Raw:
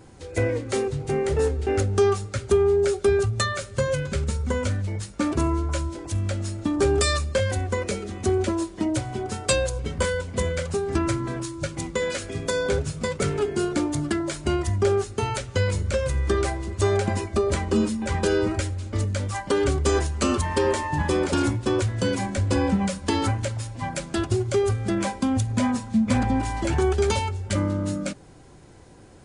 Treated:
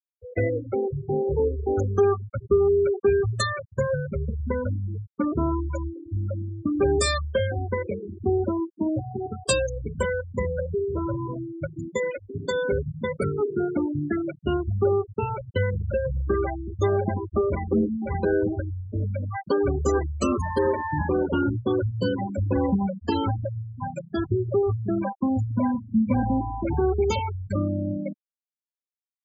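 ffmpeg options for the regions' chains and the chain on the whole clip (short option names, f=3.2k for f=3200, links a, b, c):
-filter_complex "[0:a]asettb=1/sr,asplit=3[a][b][c];[a]atrim=end=10.574[d];[b]atrim=start=10.57:end=11.32,asetpts=PTS-STARTPTS,afade=t=in:d=0.004:c=qsin,afade=t=out:st=0.746:d=0.004:c=qsin,asoftclip=type=hard:threshold=-22dB,highshelf=f=2.4k:g=-4,aecho=1:1:2:0.44,atrim=end_sample=33075[e];[c]atrim=start=11.316[f];[d][e]acrossfade=d=0.004:c1=hsin:c2=qsin[g];[g][f]acrossfade=d=0.004:c1=qsin:c2=hsin,highpass=f=70:p=1,afftfilt=real='re*gte(hypot(re,im),0.1)':imag='im*gte(hypot(re,im),0.1)':win_size=1024:overlap=0.75"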